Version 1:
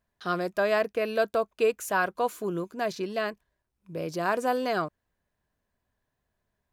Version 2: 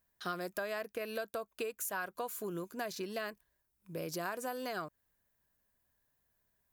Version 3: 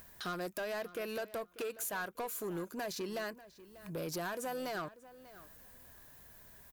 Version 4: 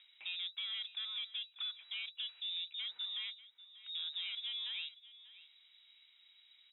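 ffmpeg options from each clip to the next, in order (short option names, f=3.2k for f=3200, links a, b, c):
-af "aemphasis=mode=production:type=50fm,acompressor=threshold=-31dB:ratio=10,equalizer=f=1.6k:t=o:w=0.85:g=3,volume=-4.5dB"
-filter_complex "[0:a]acompressor=mode=upward:threshold=-44dB:ratio=2.5,asoftclip=type=tanh:threshold=-37dB,asplit=2[a][b];[b]adelay=591,lowpass=f=4.3k:p=1,volume=-17dB,asplit=2[c][d];[d]adelay=591,lowpass=f=4.3k:p=1,volume=0.16[e];[a][c][e]amix=inputs=3:normalize=0,volume=3.5dB"
-af "aeval=exprs='0.0251*(cos(1*acos(clip(val(0)/0.0251,-1,1)))-cos(1*PI/2))+0.001*(cos(4*acos(clip(val(0)/0.0251,-1,1)))-cos(4*PI/2))':c=same,lowpass=f=3.3k:t=q:w=0.5098,lowpass=f=3.3k:t=q:w=0.6013,lowpass=f=3.3k:t=q:w=0.9,lowpass=f=3.3k:t=q:w=2.563,afreqshift=-3900,aderivative,volume=4dB"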